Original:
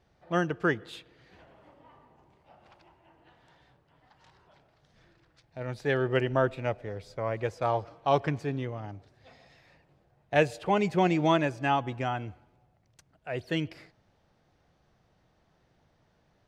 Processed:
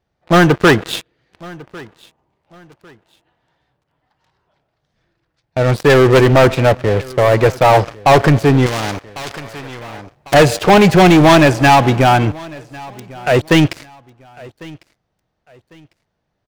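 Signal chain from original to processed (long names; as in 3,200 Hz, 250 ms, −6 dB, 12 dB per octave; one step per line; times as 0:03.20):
leveller curve on the samples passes 5
repeating echo 1,100 ms, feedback 29%, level −22.5 dB
0:08.66–0:10.34: every bin compressed towards the loudest bin 2 to 1
level +5.5 dB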